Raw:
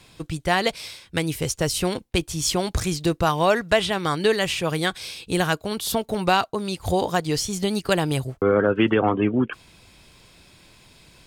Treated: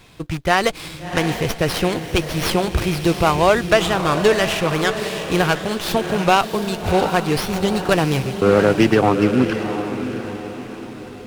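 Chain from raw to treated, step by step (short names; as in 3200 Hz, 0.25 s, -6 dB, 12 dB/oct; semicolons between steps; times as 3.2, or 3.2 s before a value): rattling part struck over -30 dBFS, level -27 dBFS; diffused feedback echo 0.702 s, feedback 45%, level -8.5 dB; running maximum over 5 samples; gain +4.5 dB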